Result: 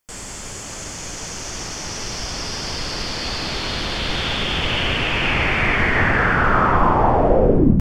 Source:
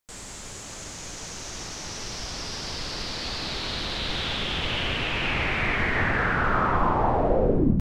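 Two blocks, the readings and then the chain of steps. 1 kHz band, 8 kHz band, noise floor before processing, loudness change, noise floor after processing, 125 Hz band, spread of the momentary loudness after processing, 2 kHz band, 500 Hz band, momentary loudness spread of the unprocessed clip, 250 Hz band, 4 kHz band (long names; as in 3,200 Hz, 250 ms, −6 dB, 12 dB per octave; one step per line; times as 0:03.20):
+7.0 dB, +7.0 dB, −40 dBFS, +7.0 dB, −33 dBFS, +7.0 dB, 14 LU, +7.0 dB, +7.0 dB, 13 LU, +7.0 dB, +5.5 dB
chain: notch filter 3,900 Hz, Q 7.2
level +7 dB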